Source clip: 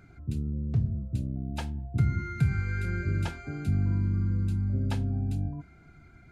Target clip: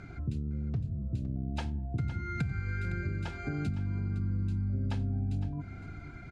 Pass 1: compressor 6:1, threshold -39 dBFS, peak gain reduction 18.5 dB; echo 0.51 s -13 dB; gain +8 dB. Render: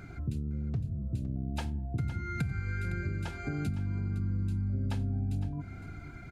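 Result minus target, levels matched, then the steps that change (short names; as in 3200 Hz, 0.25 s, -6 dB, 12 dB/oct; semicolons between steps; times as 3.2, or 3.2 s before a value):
8000 Hz band +4.5 dB
add after compressor: LPF 6400 Hz 12 dB/oct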